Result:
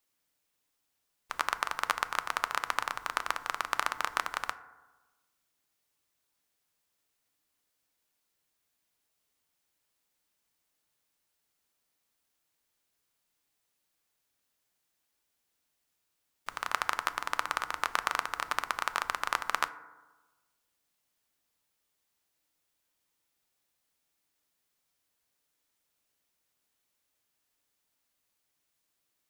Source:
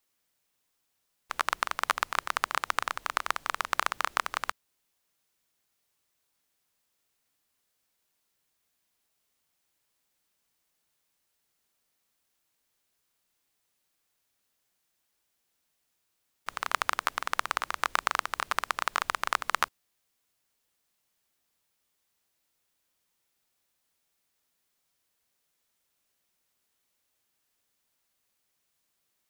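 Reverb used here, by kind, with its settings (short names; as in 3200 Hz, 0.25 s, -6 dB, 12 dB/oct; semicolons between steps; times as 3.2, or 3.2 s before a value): FDN reverb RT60 1.2 s, low-frequency decay 1.1×, high-frequency decay 0.3×, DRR 11.5 dB; gain -2.5 dB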